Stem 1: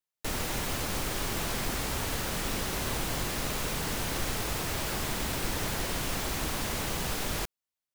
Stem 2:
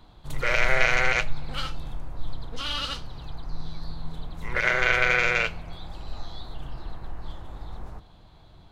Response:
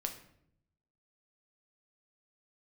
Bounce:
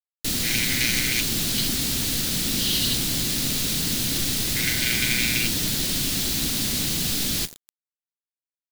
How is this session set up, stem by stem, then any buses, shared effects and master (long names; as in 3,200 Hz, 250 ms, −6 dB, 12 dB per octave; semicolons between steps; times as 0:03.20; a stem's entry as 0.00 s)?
−2.5 dB, 0.00 s, send −9 dB, no processing
−9.0 dB, 0.00 s, no send, Butterworth high-pass 1,500 Hz 72 dB per octave; high-shelf EQ 2,900 Hz +7.5 dB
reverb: on, RT60 0.70 s, pre-delay 6 ms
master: octave-band graphic EQ 125/250/500/1,000/4,000 Hz +5/+10/−4/−9/+8 dB; bit reduction 7 bits; high-shelf EQ 4,400 Hz +11.5 dB